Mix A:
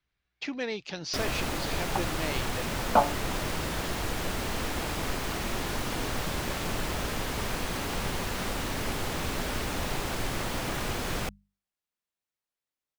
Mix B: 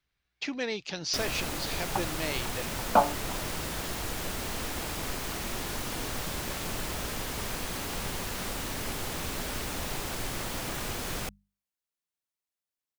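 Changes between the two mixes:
first sound -4.0 dB; master: add treble shelf 5.1 kHz +7.5 dB

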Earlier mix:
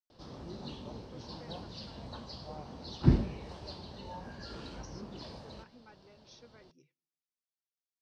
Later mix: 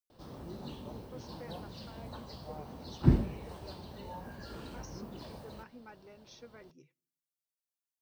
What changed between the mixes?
speech +5.5 dB; master: remove resonant low-pass 5.2 kHz, resonance Q 1.9

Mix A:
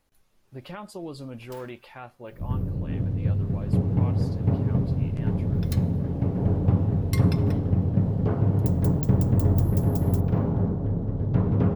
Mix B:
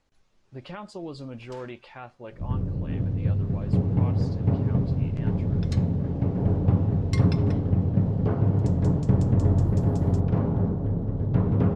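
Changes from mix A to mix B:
first sound: send off; master: add low-pass 7.5 kHz 24 dB/octave

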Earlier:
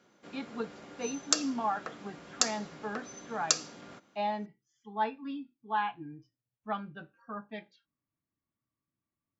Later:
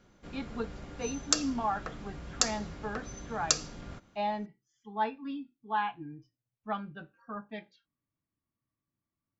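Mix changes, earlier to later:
background: remove high-pass 220 Hz 12 dB/octave; master: add bass shelf 95 Hz +6 dB

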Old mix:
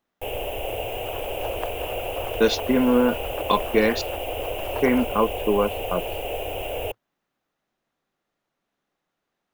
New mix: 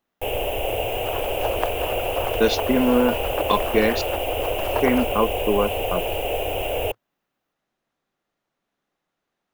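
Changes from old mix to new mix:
first sound +4.5 dB; second sound +7.5 dB

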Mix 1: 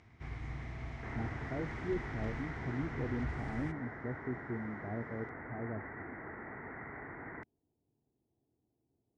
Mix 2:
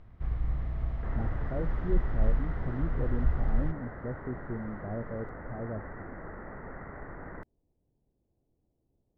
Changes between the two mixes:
first sound: add distance through air 160 m; master: remove cabinet simulation 120–8000 Hz, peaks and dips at 180 Hz -8 dB, 550 Hz -10 dB, 1.2 kHz -4 dB, 2.2 kHz +9 dB, 5.6 kHz +4 dB

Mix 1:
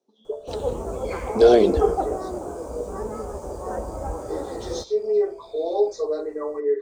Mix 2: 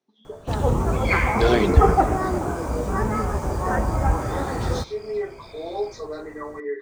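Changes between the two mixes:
first sound +10.0 dB; second sound +10.0 dB; master: add graphic EQ 125/500/2000/8000 Hz +8/-10/+10/-6 dB

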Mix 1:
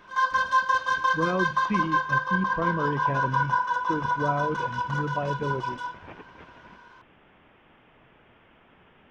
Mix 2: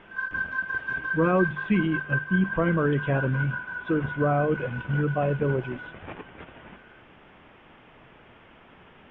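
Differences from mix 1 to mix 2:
speech +5.0 dB; background: add two resonant band-passes 710 Hz, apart 2.2 oct

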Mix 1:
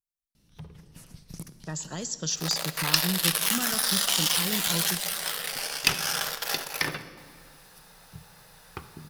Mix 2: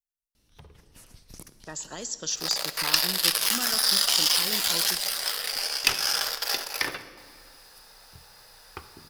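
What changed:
second sound: add peaking EQ 4.9 kHz +9.5 dB 0.27 oct; master: add peaking EQ 160 Hz -13.5 dB 0.83 oct

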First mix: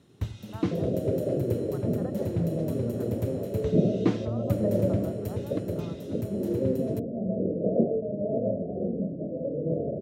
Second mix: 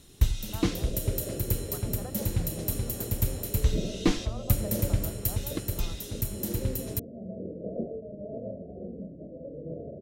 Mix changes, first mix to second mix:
first sound: remove low-pass 1.1 kHz 6 dB/octave; second sound -10.0 dB; master: remove high-pass 96 Hz 24 dB/octave

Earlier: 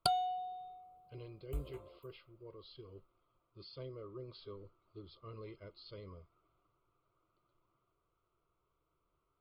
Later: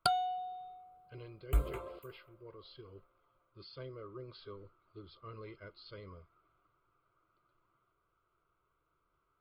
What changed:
second sound +10.5 dB; master: add peaking EQ 1.6 kHz +12 dB 0.65 oct

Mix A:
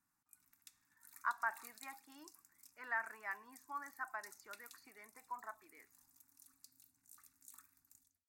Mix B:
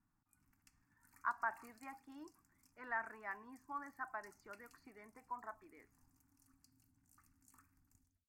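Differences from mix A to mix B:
background: add Butterworth band-stop 3.7 kHz, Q 3.5; master: add tilt EQ -3.5 dB/octave

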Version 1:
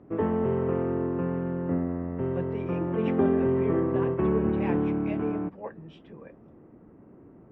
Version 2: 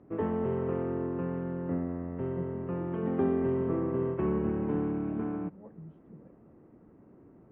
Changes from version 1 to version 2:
speech: add band-pass filter 170 Hz, Q 1.9; background -4.5 dB

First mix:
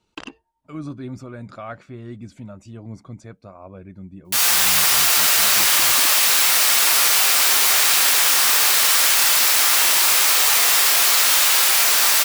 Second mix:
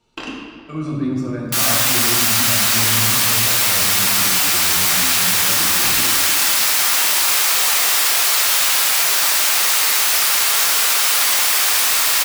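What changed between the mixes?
speech: send on; background: entry -2.80 s

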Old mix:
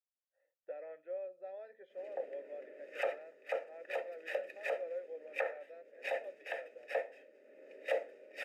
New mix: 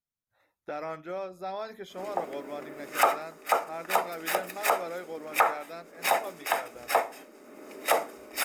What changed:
speech: remove band-pass filter 780 Hz, Q 0.74; master: remove vowel filter e

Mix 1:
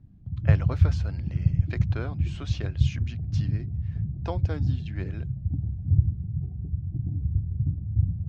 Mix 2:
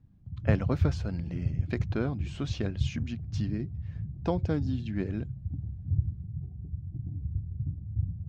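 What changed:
speech: remove frequency weighting A; background -7.0 dB

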